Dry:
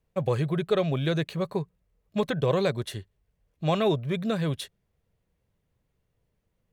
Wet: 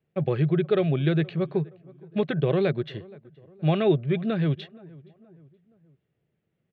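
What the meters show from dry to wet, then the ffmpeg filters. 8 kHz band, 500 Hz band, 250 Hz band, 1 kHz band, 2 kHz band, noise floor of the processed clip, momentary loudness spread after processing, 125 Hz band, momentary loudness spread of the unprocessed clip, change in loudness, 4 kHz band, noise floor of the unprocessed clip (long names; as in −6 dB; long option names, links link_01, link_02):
below −25 dB, +1.5 dB, +3.5 dB, −3.0 dB, +0.5 dB, −77 dBFS, 11 LU, +3.5 dB, 11 LU, +2.5 dB, −3.5 dB, −77 dBFS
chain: -filter_complex "[0:a]highpass=130,equalizer=frequency=150:width_type=q:width=4:gain=7,equalizer=frequency=360:width_type=q:width=4:gain=6,equalizer=frequency=510:width_type=q:width=4:gain=-4,equalizer=frequency=1000:width_type=q:width=4:gain=-10,lowpass=frequency=3300:width=0.5412,lowpass=frequency=3300:width=1.3066,asplit=2[link_01][link_02];[link_02]adelay=472,lowpass=frequency=1500:poles=1,volume=-22.5dB,asplit=2[link_03][link_04];[link_04]adelay=472,lowpass=frequency=1500:poles=1,volume=0.48,asplit=2[link_05][link_06];[link_06]adelay=472,lowpass=frequency=1500:poles=1,volume=0.48[link_07];[link_01][link_03][link_05][link_07]amix=inputs=4:normalize=0,volume=1dB"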